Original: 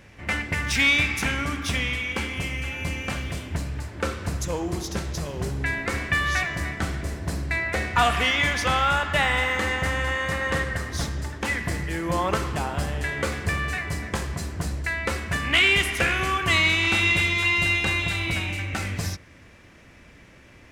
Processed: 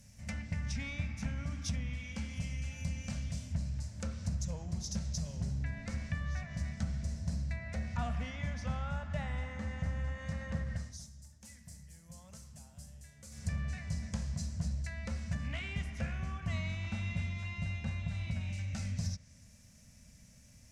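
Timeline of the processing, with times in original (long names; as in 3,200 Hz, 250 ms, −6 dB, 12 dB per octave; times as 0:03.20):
0:10.74–0:13.55: duck −17 dB, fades 0.25 s
whole clip: parametric band 740 Hz −5 dB 0.33 octaves; treble cut that deepens with the level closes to 1,700 Hz, closed at −21.5 dBFS; drawn EQ curve 230 Hz 0 dB, 340 Hz −25 dB, 640 Hz −6 dB, 1,100 Hz −17 dB, 3,300 Hz −10 dB, 5,800 Hz +9 dB; level −6 dB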